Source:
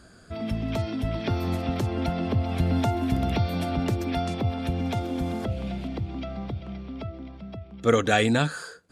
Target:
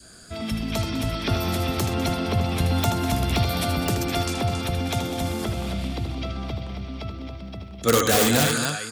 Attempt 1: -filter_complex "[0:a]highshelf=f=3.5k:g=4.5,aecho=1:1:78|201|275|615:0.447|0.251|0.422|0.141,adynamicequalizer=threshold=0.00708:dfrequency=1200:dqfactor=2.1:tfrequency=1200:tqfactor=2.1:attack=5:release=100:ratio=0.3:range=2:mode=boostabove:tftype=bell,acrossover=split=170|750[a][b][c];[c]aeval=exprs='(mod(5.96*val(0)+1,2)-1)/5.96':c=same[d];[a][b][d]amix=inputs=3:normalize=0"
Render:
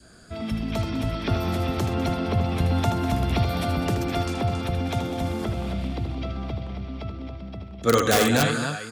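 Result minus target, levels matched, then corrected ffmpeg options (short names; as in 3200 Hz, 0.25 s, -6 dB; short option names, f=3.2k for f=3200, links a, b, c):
8000 Hz band -5.0 dB
-filter_complex "[0:a]highshelf=f=3.5k:g=15.5,aecho=1:1:78|201|275|615:0.447|0.251|0.422|0.141,adynamicequalizer=threshold=0.00708:dfrequency=1200:dqfactor=2.1:tfrequency=1200:tqfactor=2.1:attack=5:release=100:ratio=0.3:range=2:mode=boostabove:tftype=bell,acrossover=split=170|750[a][b][c];[c]aeval=exprs='(mod(5.96*val(0)+1,2)-1)/5.96':c=same[d];[a][b][d]amix=inputs=3:normalize=0"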